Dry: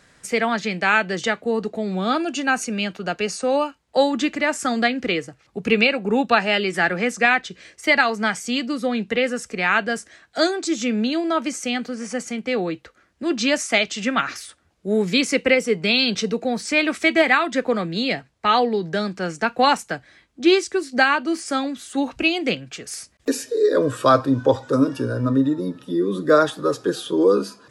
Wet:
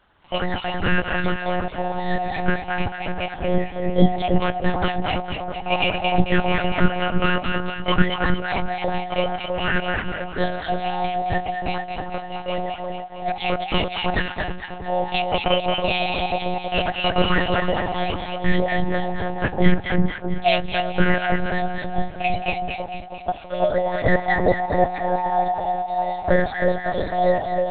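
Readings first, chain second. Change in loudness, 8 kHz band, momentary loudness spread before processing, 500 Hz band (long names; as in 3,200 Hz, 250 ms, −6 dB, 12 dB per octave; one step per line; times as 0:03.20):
−2.0 dB, below −40 dB, 9 LU, −2.0 dB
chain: frequency inversion band by band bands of 1,000 Hz
low-shelf EQ 300 Hz +5.5 dB
in parallel at −10 dB: bit reduction 5 bits
on the sum: parametric band 200 Hz +14.5 dB 0.33 octaves
on a send: echo with a time of its own for lows and highs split 1,200 Hz, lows 322 ms, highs 225 ms, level −4 dB
on the sum: one-pitch LPC vocoder at 8 kHz 180 Hz
level −6.5 dB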